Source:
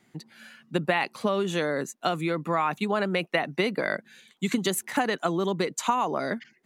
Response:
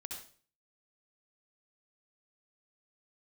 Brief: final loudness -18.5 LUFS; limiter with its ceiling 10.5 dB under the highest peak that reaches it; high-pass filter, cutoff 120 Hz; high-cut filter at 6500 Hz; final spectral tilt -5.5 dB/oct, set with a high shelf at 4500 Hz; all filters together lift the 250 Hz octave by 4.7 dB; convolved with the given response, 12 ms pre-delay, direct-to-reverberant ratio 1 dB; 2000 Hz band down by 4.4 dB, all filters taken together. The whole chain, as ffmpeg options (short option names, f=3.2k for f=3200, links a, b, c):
-filter_complex "[0:a]highpass=120,lowpass=6.5k,equalizer=f=250:t=o:g=7,equalizer=f=2k:t=o:g=-6,highshelf=f=4.5k:g=3,alimiter=limit=-18.5dB:level=0:latency=1,asplit=2[a][b];[1:a]atrim=start_sample=2205,adelay=12[c];[b][c]afir=irnorm=-1:irlink=0,volume=1.5dB[d];[a][d]amix=inputs=2:normalize=0,volume=8dB"